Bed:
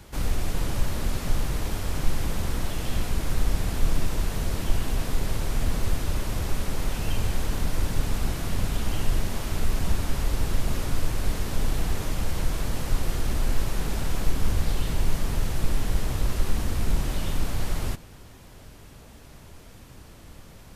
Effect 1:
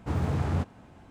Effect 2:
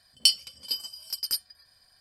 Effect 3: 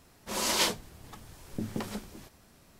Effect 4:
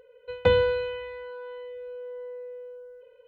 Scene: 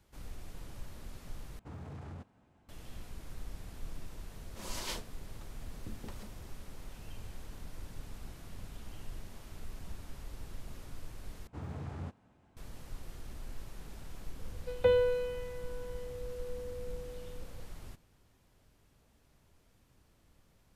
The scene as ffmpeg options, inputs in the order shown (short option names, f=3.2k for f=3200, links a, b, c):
-filter_complex "[1:a]asplit=2[a][b];[0:a]volume=-20dB[c];[a]alimiter=limit=-23dB:level=0:latency=1:release=30[d];[4:a]equalizer=f=530:t=o:w=0.52:g=7[e];[c]asplit=3[f][g][h];[f]atrim=end=1.594[i];[d]atrim=end=1.1,asetpts=PTS-STARTPTS,volume=-15dB[j];[g]atrim=start=2.686:end=11.474[k];[b]atrim=end=1.1,asetpts=PTS-STARTPTS,volume=-14dB[l];[h]atrim=start=12.566[m];[3:a]atrim=end=2.79,asetpts=PTS-STARTPTS,volume=-13.5dB,afade=t=in:d=0.004:c=hsin,afade=t=out:st=2.786:d=0.004:c=hsin,adelay=4280[n];[e]atrim=end=3.27,asetpts=PTS-STARTPTS,volume=-11dB,afade=t=in:d=0.004:c=hsin,afade=t=out:st=3.266:d=0.004:c=hsin,adelay=14390[o];[i][j]acrossfade=d=0.004:c1=hsin:c2=hsin[p];[p][k]acrossfade=d=0.004:c1=hsin:c2=hsin[q];[q][l]acrossfade=d=0.004:c1=hsin:c2=hsin[r];[r][m]acrossfade=d=0.004:c1=hsin:c2=hsin[s];[s][n][o]amix=inputs=3:normalize=0"